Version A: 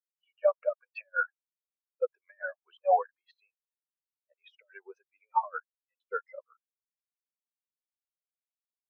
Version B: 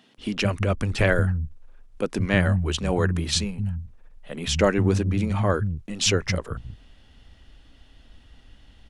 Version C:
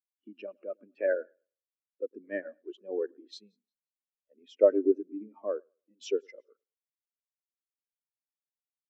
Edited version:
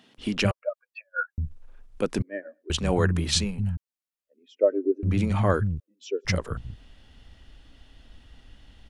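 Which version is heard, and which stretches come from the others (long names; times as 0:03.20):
B
0:00.51–0:01.38: punch in from A
0:02.22–0:02.70: punch in from C
0:03.77–0:05.03: punch in from C
0:05.80–0:06.25: punch in from C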